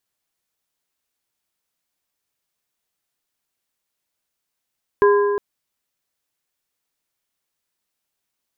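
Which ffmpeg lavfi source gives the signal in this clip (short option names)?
-f lavfi -i "aevalsrc='0.316*pow(10,-3*t/2.21)*sin(2*PI*408*t)+0.158*pow(10,-3*t/1.679)*sin(2*PI*1020*t)+0.0794*pow(10,-3*t/1.458)*sin(2*PI*1632*t)':d=0.36:s=44100"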